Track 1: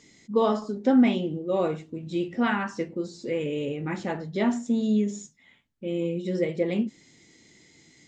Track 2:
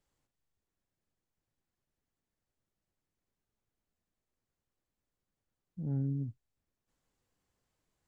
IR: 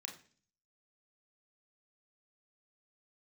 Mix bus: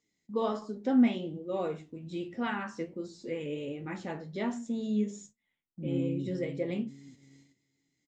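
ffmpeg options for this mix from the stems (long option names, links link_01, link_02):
-filter_complex "[0:a]volume=-3.5dB,asplit=2[link_01][link_02];[link_02]volume=-17.5dB[link_03];[1:a]equalizer=frequency=310:width_type=o:width=0.74:gain=12,volume=1dB,asplit=2[link_04][link_05];[link_05]volume=-11dB[link_06];[2:a]atrim=start_sample=2205[link_07];[link_03][link_07]afir=irnorm=-1:irlink=0[link_08];[link_06]aecho=0:1:429|858|1287|1716|2145|2574:1|0.45|0.202|0.0911|0.041|0.0185[link_09];[link_01][link_04][link_08][link_09]amix=inputs=4:normalize=0,agate=range=-17dB:threshold=-50dB:ratio=16:detection=peak,flanger=delay=8.3:depth=6.1:regen=66:speed=1.3:shape=triangular"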